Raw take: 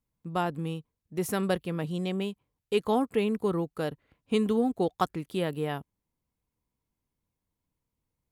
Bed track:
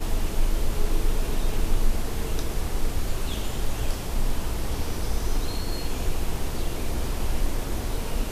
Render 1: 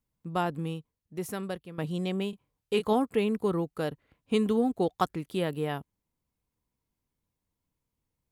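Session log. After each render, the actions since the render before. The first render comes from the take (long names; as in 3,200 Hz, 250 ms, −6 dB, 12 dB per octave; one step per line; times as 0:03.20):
0:00.59–0:01.78: fade out, to −13 dB
0:02.30–0:02.93: double-tracking delay 28 ms −8 dB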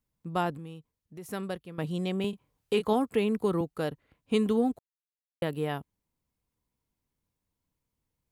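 0:00.57–0:01.31: downward compressor 2 to 1, threshold −46 dBFS
0:02.24–0:03.61: multiband upward and downward compressor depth 40%
0:04.79–0:05.42: silence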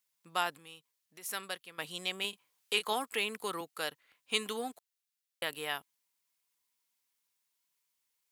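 high-pass filter 750 Hz 6 dB per octave
tilt shelving filter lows −8.5 dB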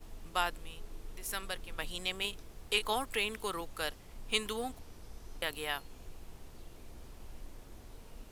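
mix in bed track −23 dB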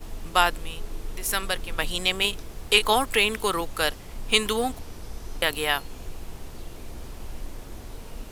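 level +12 dB
brickwall limiter −3 dBFS, peak gain reduction 1.5 dB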